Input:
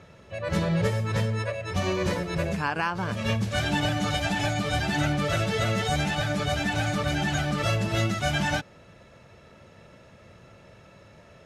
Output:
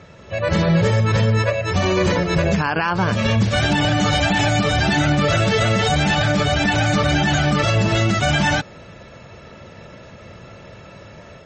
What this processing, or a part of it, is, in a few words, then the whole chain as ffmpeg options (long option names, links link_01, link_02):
low-bitrate web radio: -af "dynaudnorm=framelen=160:gausssize=3:maxgain=4.5dB,alimiter=limit=-15.5dB:level=0:latency=1:release=34,volume=7dB" -ar 44100 -c:a libmp3lame -b:a 32k